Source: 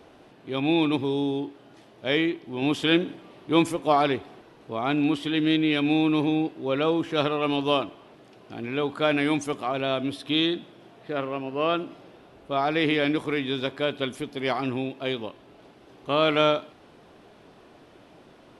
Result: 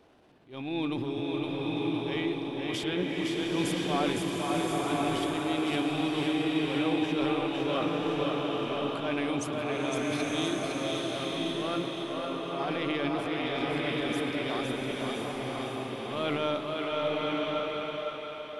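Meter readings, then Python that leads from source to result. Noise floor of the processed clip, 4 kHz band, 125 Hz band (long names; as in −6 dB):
−38 dBFS, −4.0 dB, −3.0 dB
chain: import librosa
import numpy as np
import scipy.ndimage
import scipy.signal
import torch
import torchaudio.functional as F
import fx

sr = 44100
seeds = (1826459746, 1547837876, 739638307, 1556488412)

y = fx.transient(x, sr, attack_db=-10, sustain_db=8)
y = fx.echo_split(y, sr, split_hz=330.0, low_ms=187, high_ms=510, feedback_pct=52, wet_db=-4.0)
y = fx.rev_bloom(y, sr, seeds[0], attack_ms=1050, drr_db=-1.5)
y = F.gain(torch.from_numpy(y), -9.0).numpy()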